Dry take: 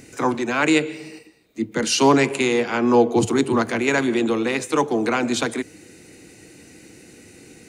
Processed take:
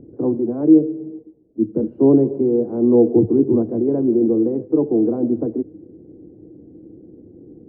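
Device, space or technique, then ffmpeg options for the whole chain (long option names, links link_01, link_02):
under water: -af "lowpass=frequency=510:width=0.5412,lowpass=frequency=510:width=1.3066,equalizer=frequency=320:width_type=o:width=0.26:gain=6,volume=3dB"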